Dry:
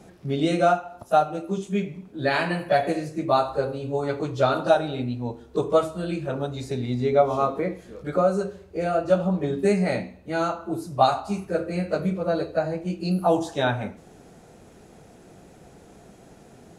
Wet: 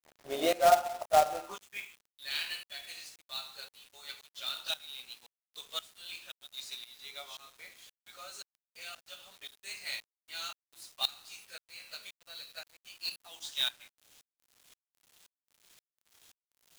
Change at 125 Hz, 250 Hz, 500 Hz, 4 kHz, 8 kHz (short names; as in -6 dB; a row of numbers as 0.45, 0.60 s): under -30 dB, -24.0 dB, -13.5 dB, +1.5 dB, +1.0 dB